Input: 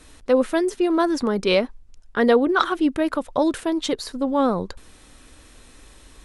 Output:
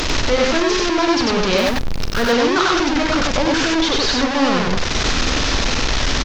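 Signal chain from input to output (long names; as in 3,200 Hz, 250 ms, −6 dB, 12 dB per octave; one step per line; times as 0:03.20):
linear delta modulator 32 kbit/s, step −12 dBFS
hum removal 51.55 Hz, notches 6
0:01.58–0:02.23: floating-point word with a short mantissa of 2 bits
on a send: loudspeakers that aren't time-aligned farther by 15 metres −10 dB, 33 metres −1 dB
on the sum: level −1.5 dB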